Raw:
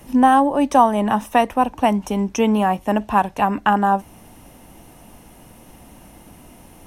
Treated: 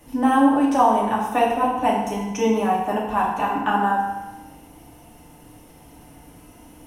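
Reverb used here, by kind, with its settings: FDN reverb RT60 1.1 s, low-frequency decay 0.95×, high-frequency decay 0.8×, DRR -5 dB; trim -8.5 dB

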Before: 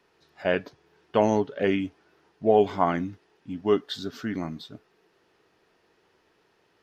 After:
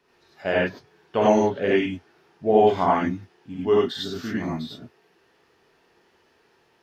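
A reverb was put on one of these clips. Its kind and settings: gated-style reverb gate 120 ms rising, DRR -5 dB; trim -2 dB

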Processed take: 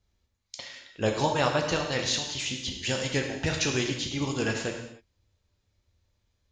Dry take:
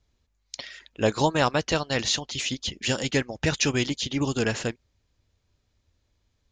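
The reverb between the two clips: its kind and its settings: gated-style reverb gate 320 ms falling, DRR 1.5 dB; trim -4.5 dB

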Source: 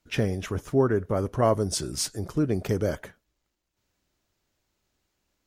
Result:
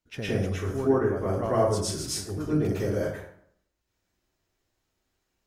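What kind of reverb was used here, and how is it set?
plate-style reverb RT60 0.65 s, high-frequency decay 0.6×, pre-delay 95 ms, DRR -9.5 dB; trim -10.5 dB

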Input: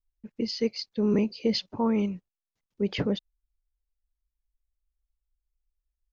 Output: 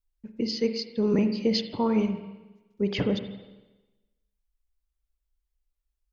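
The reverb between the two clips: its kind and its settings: spring tank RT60 1.1 s, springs 41/46/55 ms, chirp 45 ms, DRR 7.5 dB; trim +1 dB

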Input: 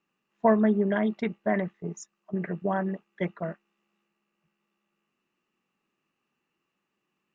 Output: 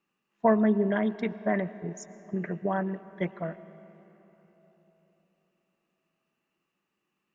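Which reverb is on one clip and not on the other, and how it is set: algorithmic reverb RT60 4 s, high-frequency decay 0.55×, pre-delay 75 ms, DRR 16 dB; trim -1 dB

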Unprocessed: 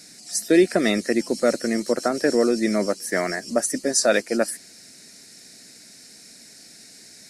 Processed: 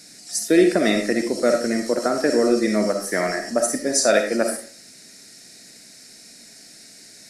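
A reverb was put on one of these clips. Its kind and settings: algorithmic reverb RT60 0.46 s, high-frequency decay 0.6×, pre-delay 15 ms, DRR 4 dB

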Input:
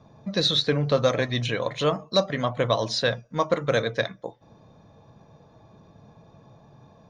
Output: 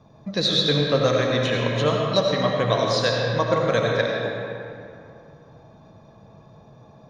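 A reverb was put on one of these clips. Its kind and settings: algorithmic reverb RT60 2.6 s, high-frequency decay 0.6×, pre-delay 45 ms, DRR -1 dB

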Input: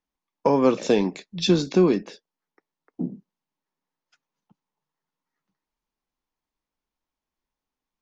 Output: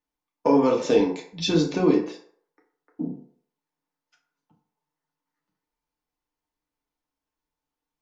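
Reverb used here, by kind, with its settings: FDN reverb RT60 0.57 s, low-frequency decay 0.7×, high-frequency decay 0.55×, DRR -1.5 dB; trim -4 dB

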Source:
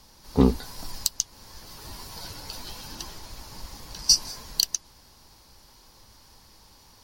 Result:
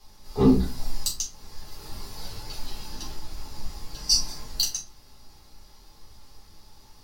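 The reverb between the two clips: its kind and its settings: simulated room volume 170 m³, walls furnished, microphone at 4 m; trim -9 dB

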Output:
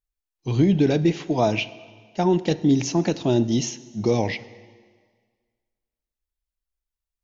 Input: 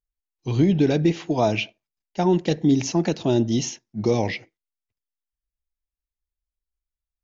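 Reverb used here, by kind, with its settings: plate-style reverb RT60 1.7 s, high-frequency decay 0.95×, DRR 16 dB

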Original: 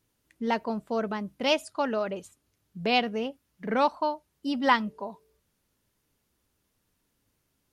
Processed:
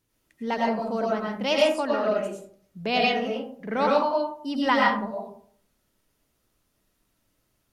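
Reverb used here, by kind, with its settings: algorithmic reverb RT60 0.55 s, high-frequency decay 0.45×, pre-delay 65 ms, DRR -3.5 dB; trim -1.5 dB

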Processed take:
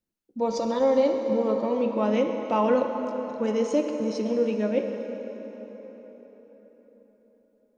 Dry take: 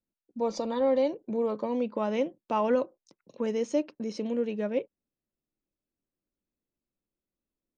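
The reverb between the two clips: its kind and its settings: plate-style reverb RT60 4.8 s, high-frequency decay 0.65×, DRR 3.5 dB; trim +3 dB

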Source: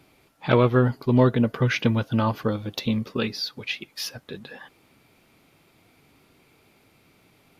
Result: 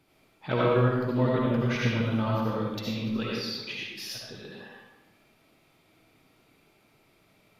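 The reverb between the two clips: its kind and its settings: algorithmic reverb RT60 1.1 s, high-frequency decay 0.8×, pre-delay 35 ms, DRR -5 dB; trim -9.5 dB

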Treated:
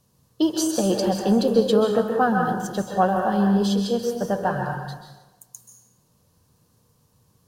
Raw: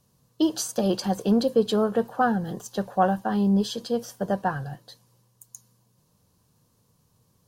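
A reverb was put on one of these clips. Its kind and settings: plate-style reverb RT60 1.1 s, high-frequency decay 0.65×, pre-delay 120 ms, DRR 2 dB; trim +1.5 dB

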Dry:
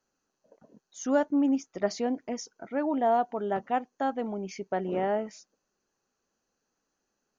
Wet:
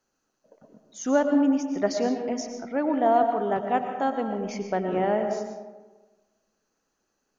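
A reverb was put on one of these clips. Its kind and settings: algorithmic reverb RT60 1.3 s, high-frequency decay 0.45×, pre-delay 75 ms, DRR 5.5 dB; trim +3 dB

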